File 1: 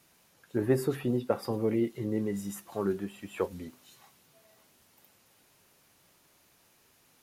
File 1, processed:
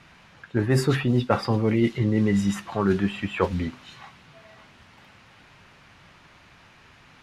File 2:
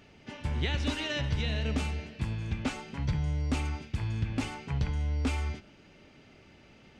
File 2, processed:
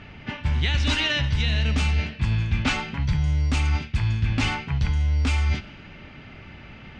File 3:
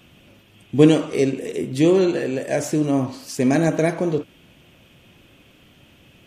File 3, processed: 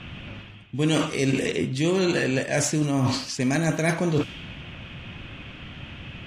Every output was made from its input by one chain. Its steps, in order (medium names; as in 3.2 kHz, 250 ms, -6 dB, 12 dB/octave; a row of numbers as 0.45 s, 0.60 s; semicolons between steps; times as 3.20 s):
peaking EQ 430 Hz -11 dB 2.1 oct; level-controlled noise filter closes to 2.3 kHz, open at -23 dBFS; reverse; compression 8:1, threshold -37 dBFS; reverse; normalise loudness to -24 LUFS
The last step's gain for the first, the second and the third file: +20.0 dB, +18.0 dB, +17.0 dB